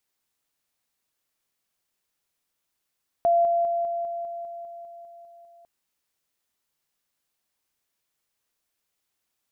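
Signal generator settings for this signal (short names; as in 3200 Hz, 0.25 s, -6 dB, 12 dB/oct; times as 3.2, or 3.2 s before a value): level ladder 685 Hz -16.5 dBFS, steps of -3 dB, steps 12, 0.20 s 0.00 s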